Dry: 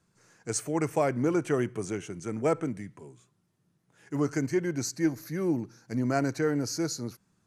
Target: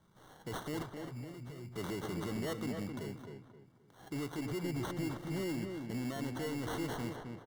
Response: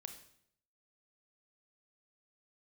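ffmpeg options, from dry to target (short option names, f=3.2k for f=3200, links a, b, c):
-filter_complex "[0:a]asettb=1/sr,asplit=3[a][b][c];[a]atrim=end=4.484[d];[b]atrim=start=4.48:end=5.29,asetpts=PTS-STARTPTS,afade=t=in:d=0.004:c=qsin,afade=t=out:st=0.806:d=0.004:c=qsin,lowshelf=f=410:g=9[e];[c]atrim=start=5.286[f];[d][e]acrossfade=d=0.004:c1=hsin:c2=qsin[g];[g][f]acrossfade=d=0.004:c1=qsin:c2=hsin,acompressor=threshold=-34dB:ratio=6,alimiter=level_in=8dB:limit=-24dB:level=0:latency=1:release=37,volume=-8dB,asettb=1/sr,asplit=3[h][i][j];[h]atrim=end=0.824[k];[i]atrim=start=0.82:end=1.76,asetpts=PTS-STARTPTS,afade=t=in:d=0.004:c=qsin,afade=t=out:st=0.936:d=0.004:c=qsin,acrossover=split=130[l][m];[m]acompressor=threshold=-54dB:ratio=6[n];[l][n]amix=inputs=2:normalize=0[o];[j]atrim=start=1.756[p];[k][o]acrossfade=d=0.004:c1=hsin:c2=qsin[q];[q][p]acrossfade=d=0.004:c1=qsin:c2=hsin,acrusher=samples=18:mix=1:aa=0.000001,asoftclip=type=hard:threshold=-36.5dB,asuperstop=centerf=2500:order=8:qfactor=6.6,asplit=2[r][s];[s]adelay=263,lowpass=f=2.3k:p=1,volume=-5dB,asplit=2[t][u];[u]adelay=263,lowpass=f=2.3k:p=1,volume=0.32,asplit=2[v][w];[w]adelay=263,lowpass=f=2.3k:p=1,volume=0.32,asplit=2[x][y];[y]adelay=263,lowpass=f=2.3k:p=1,volume=0.32[z];[r][t][v][x][z]amix=inputs=5:normalize=0,volume=3dB"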